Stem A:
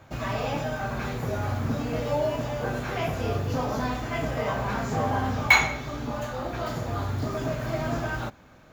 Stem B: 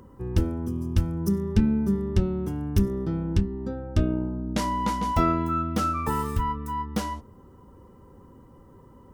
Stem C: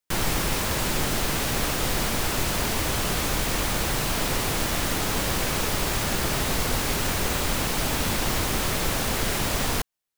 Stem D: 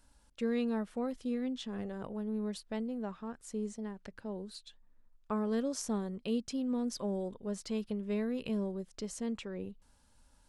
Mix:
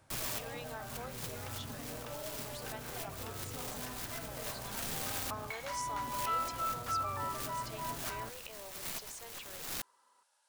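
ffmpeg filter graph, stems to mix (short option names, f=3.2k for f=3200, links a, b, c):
-filter_complex "[0:a]acompressor=threshold=-28dB:ratio=6,volume=-14dB[a];[1:a]highpass=1k,equalizer=f=1.3k:t=o:w=2:g=10,adelay=1100,volume=-16dB[b];[2:a]aeval=exprs='(mod(11.2*val(0)+1,2)-1)/11.2':c=same,acrusher=bits=5:dc=4:mix=0:aa=0.000001,volume=-13.5dB[c];[3:a]highpass=f=620:w=0.5412,highpass=f=620:w=1.3066,volume=-2.5dB,asplit=2[d][e];[e]apad=whole_len=448518[f];[c][f]sidechaincompress=threshold=-58dB:ratio=8:attack=7.1:release=163[g];[a][b][g][d]amix=inputs=4:normalize=0"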